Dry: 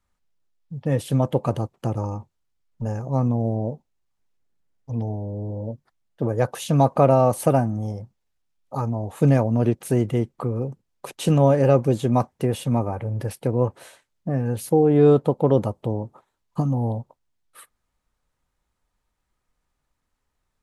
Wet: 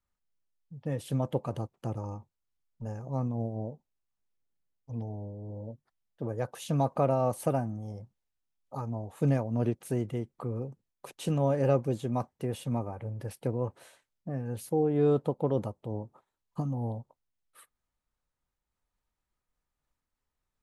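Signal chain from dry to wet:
amplitude modulation by smooth noise, depth 60%
level −7 dB

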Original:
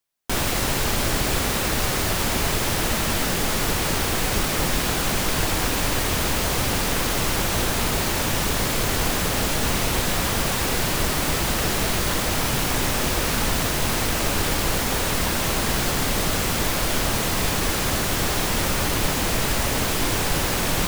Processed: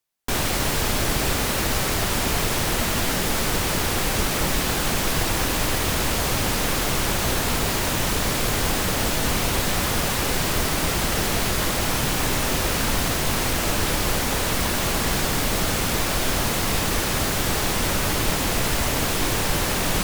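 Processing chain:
wrong playback speed 24 fps film run at 25 fps

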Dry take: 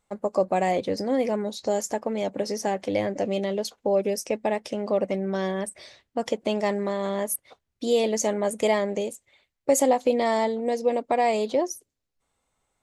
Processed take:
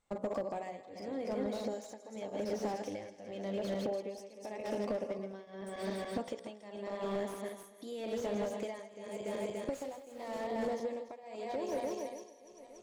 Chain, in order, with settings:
feedback delay that plays each chunk backwards 144 ms, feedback 61%, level −5.5 dB
camcorder AGC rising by 5.6 dB per second
low-pass filter 8,800 Hz 12 dB per octave
hum removal 62.49 Hz, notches 23
downward compressor 10 to 1, threshold −30 dBFS, peak gain reduction 15 dB
0:09.73–0:10.47: centre clipping without the shift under −41 dBFS
shaped tremolo triangle 0.87 Hz, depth 95%
on a send: feedback echo with a high-pass in the loop 163 ms, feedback 59%, high-pass 420 Hz, level −18.5 dB
on the sum: slew-rate limiting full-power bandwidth 17 Hz

